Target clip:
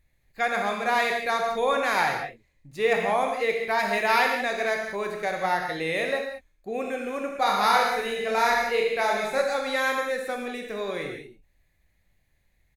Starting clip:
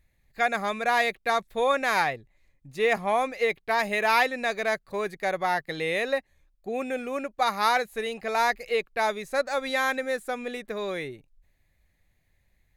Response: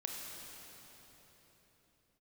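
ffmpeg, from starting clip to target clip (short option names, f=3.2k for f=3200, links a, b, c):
-filter_complex "[0:a]asplit=3[a][b][c];[a]afade=t=out:st=7.34:d=0.02[d];[b]aecho=1:1:30|67.5|114.4|173|246.2:0.631|0.398|0.251|0.158|0.1,afade=t=in:st=7.34:d=0.02,afade=t=out:st=9.41:d=0.02[e];[c]afade=t=in:st=9.41:d=0.02[f];[d][e][f]amix=inputs=3:normalize=0[g];[1:a]atrim=start_sample=2205,afade=t=out:st=0.3:d=0.01,atrim=end_sample=13671,asetrate=52920,aresample=44100[h];[g][h]afir=irnorm=-1:irlink=0,volume=3.5dB"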